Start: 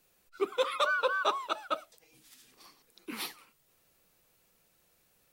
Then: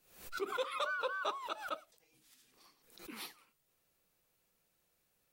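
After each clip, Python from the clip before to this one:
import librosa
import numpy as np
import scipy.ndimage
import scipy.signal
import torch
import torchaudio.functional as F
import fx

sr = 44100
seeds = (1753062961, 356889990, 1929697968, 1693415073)

y = fx.pre_swell(x, sr, db_per_s=97.0)
y = F.gain(torch.from_numpy(y), -8.5).numpy()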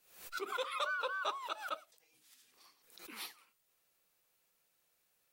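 y = fx.low_shelf(x, sr, hz=390.0, db=-11.5)
y = F.gain(torch.from_numpy(y), 1.5).numpy()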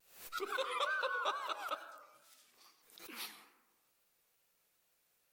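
y = fx.rev_plate(x, sr, seeds[0], rt60_s=1.2, hf_ratio=0.35, predelay_ms=80, drr_db=10.5)
y = fx.vibrato(y, sr, rate_hz=2.3, depth_cents=85.0)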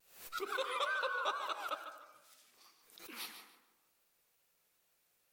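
y = fx.echo_feedback(x, sr, ms=148, feedback_pct=22, wet_db=-11.0)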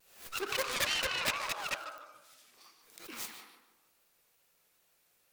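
y = fx.self_delay(x, sr, depth_ms=0.64)
y = F.gain(torch.from_numpy(y), 5.5).numpy()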